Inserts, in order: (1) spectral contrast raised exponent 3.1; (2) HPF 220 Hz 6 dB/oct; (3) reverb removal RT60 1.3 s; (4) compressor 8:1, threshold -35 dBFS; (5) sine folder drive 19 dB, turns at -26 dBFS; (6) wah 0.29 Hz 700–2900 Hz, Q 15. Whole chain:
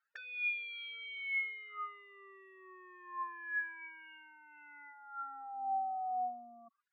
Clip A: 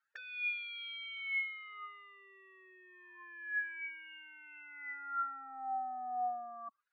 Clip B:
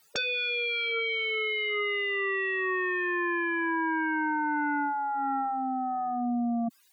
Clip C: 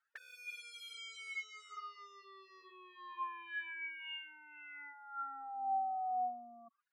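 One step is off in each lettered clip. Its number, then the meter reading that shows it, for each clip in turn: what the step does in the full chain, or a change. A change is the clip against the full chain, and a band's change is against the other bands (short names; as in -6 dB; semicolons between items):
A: 3, 4 kHz band +3.0 dB; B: 6, 250 Hz band +19.5 dB; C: 4, mean gain reduction 4.5 dB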